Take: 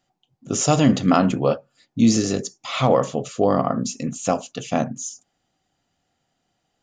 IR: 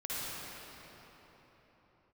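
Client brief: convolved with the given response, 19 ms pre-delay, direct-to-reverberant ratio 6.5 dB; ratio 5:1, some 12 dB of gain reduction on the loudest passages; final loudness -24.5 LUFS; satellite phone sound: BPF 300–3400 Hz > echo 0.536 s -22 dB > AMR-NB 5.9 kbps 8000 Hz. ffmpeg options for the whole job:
-filter_complex "[0:a]acompressor=threshold=-25dB:ratio=5,asplit=2[a][b];[1:a]atrim=start_sample=2205,adelay=19[c];[b][c]afir=irnorm=-1:irlink=0,volume=-11.5dB[d];[a][d]amix=inputs=2:normalize=0,highpass=300,lowpass=3.4k,aecho=1:1:536:0.0794,volume=9.5dB" -ar 8000 -c:a libopencore_amrnb -b:a 5900

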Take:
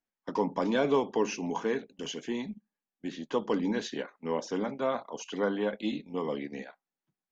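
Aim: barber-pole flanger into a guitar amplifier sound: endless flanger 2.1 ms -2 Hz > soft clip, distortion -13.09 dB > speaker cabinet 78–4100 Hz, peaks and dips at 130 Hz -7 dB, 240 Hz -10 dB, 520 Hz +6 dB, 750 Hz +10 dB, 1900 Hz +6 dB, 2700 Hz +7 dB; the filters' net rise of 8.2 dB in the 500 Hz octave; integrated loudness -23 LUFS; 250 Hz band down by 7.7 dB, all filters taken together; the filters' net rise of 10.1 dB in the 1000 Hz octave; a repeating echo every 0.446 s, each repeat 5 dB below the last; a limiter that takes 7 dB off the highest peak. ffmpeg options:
-filter_complex "[0:a]equalizer=f=250:t=o:g=-8,equalizer=f=500:t=o:g=5,equalizer=f=1k:t=o:g=5.5,alimiter=limit=-18dB:level=0:latency=1,aecho=1:1:446|892|1338|1784|2230|2676|3122:0.562|0.315|0.176|0.0988|0.0553|0.031|0.0173,asplit=2[a][b];[b]adelay=2.1,afreqshift=-2[c];[a][c]amix=inputs=2:normalize=1,asoftclip=threshold=-28dB,highpass=78,equalizer=f=130:t=q:w=4:g=-7,equalizer=f=240:t=q:w=4:g=-10,equalizer=f=520:t=q:w=4:g=6,equalizer=f=750:t=q:w=4:g=10,equalizer=f=1.9k:t=q:w=4:g=6,equalizer=f=2.7k:t=q:w=4:g=7,lowpass=f=4.1k:w=0.5412,lowpass=f=4.1k:w=1.3066,volume=9.5dB"

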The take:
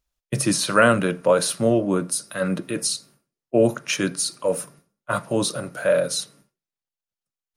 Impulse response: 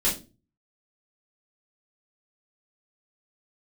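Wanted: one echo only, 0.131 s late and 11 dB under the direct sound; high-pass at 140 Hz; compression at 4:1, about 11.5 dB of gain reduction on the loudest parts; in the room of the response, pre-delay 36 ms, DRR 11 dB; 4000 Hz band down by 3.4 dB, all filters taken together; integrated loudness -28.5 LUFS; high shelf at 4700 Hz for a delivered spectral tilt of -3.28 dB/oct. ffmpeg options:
-filter_complex "[0:a]highpass=140,equalizer=f=4k:t=o:g=-8.5,highshelf=f=4.7k:g=7.5,acompressor=threshold=-26dB:ratio=4,aecho=1:1:131:0.282,asplit=2[a][b];[1:a]atrim=start_sample=2205,adelay=36[c];[b][c]afir=irnorm=-1:irlink=0,volume=-21.5dB[d];[a][d]amix=inputs=2:normalize=0"

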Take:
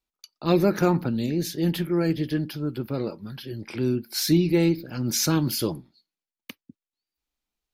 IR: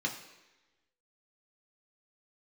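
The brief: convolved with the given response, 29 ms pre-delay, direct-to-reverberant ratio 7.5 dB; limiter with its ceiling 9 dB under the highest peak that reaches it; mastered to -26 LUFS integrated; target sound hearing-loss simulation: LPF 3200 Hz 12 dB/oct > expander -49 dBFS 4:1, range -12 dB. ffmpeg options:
-filter_complex "[0:a]alimiter=limit=-17dB:level=0:latency=1,asplit=2[a][b];[1:a]atrim=start_sample=2205,adelay=29[c];[b][c]afir=irnorm=-1:irlink=0,volume=-12.5dB[d];[a][d]amix=inputs=2:normalize=0,lowpass=3.2k,agate=range=-12dB:threshold=-49dB:ratio=4,volume=1.5dB"

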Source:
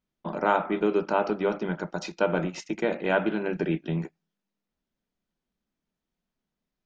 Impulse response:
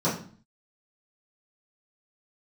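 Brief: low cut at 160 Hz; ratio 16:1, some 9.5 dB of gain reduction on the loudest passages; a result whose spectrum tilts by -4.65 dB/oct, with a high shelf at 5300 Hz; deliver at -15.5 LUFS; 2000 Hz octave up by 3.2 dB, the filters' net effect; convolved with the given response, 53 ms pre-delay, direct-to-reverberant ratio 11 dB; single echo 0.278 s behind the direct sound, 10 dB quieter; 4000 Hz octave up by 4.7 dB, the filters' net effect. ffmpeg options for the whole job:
-filter_complex "[0:a]highpass=160,equalizer=f=2k:t=o:g=3.5,equalizer=f=4k:t=o:g=3,highshelf=f=5.3k:g=5,acompressor=threshold=-26dB:ratio=16,aecho=1:1:278:0.316,asplit=2[a][b];[1:a]atrim=start_sample=2205,adelay=53[c];[b][c]afir=irnorm=-1:irlink=0,volume=-23.5dB[d];[a][d]amix=inputs=2:normalize=0,volume=16dB"

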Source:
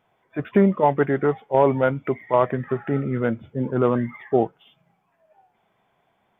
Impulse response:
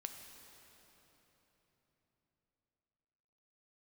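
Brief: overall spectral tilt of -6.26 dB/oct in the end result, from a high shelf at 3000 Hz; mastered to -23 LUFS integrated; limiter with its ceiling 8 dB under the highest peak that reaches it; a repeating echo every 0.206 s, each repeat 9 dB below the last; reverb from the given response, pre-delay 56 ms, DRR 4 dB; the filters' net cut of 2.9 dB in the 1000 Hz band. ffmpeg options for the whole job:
-filter_complex "[0:a]equalizer=f=1k:t=o:g=-3,highshelf=f=3k:g=-6,alimiter=limit=-15dB:level=0:latency=1,aecho=1:1:206|412|618|824:0.355|0.124|0.0435|0.0152,asplit=2[a][b];[1:a]atrim=start_sample=2205,adelay=56[c];[b][c]afir=irnorm=-1:irlink=0,volume=-1dB[d];[a][d]amix=inputs=2:normalize=0,volume=2dB"

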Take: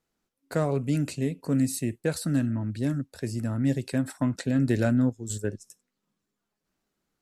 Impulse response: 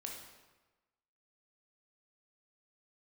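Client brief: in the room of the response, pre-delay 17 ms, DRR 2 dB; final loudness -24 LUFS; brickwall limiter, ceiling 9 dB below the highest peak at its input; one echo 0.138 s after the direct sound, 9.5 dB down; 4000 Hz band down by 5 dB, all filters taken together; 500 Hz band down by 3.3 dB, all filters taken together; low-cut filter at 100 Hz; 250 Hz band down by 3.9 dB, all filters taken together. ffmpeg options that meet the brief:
-filter_complex "[0:a]highpass=100,equalizer=f=250:t=o:g=-3.5,equalizer=f=500:t=o:g=-3,equalizer=f=4k:t=o:g=-6,alimiter=limit=-22.5dB:level=0:latency=1,aecho=1:1:138:0.335,asplit=2[a][b];[1:a]atrim=start_sample=2205,adelay=17[c];[b][c]afir=irnorm=-1:irlink=0,volume=0dB[d];[a][d]amix=inputs=2:normalize=0,volume=7dB"

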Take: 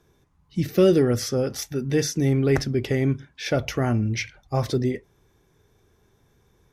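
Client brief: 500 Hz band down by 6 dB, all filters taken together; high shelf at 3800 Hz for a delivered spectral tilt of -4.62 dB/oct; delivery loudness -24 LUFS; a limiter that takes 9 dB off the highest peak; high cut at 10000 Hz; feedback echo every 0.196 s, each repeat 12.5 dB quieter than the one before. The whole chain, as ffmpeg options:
-af "lowpass=10k,equalizer=f=500:t=o:g=-8.5,highshelf=f=3.8k:g=8,alimiter=limit=-19dB:level=0:latency=1,aecho=1:1:196|392|588:0.237|0.0569|0.0137,volume=4.5dB"

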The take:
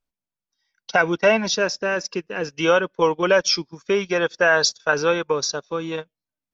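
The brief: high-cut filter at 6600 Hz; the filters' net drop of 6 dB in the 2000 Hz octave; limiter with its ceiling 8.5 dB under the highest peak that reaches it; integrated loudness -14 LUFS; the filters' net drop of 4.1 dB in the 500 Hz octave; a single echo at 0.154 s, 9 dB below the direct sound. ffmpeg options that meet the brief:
-af "lowpass=6.6k,equalizer=f=500:t=o:g=-4.5,equalizer=f=2k:t=o:g=-8.5,alimiter=limit=-17.5dB:level=0:latency=1,aecho=1:1:154:0.355,volume=14dB"

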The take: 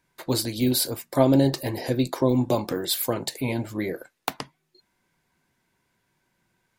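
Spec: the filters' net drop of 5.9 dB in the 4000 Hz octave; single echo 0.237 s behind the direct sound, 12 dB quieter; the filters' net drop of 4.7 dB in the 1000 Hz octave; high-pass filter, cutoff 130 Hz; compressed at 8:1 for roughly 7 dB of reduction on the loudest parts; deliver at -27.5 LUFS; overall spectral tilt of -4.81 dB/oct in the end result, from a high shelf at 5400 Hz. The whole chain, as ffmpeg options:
-af "highpass=130,equalizer=f=1k:t=o:g=-6,equalizer=f=4k:t=o:g=-4,highshelf=f=5.4k:g=-6,acompressor=threshold=-22dB:ratio=8,aecho=1:1:237:0.251,volume=2.5dB"

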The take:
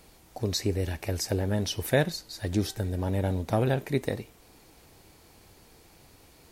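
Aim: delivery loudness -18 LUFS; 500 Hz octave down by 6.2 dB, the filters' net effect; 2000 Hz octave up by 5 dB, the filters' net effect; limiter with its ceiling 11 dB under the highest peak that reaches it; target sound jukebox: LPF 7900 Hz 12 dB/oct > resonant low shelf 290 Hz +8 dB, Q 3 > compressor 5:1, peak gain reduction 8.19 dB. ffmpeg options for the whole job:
-af "equalizer=f=500:t=o:g=-3.5,equalizer=f=2k:t=o:g=6.5,alimiter=limit=-20dB:level=0:latency=1,lowpass=7.9k,lowshelf=f=290:t=q:w=3:g=8,acompressor=threshold=-23dB:ratio=5,volume=11dB"

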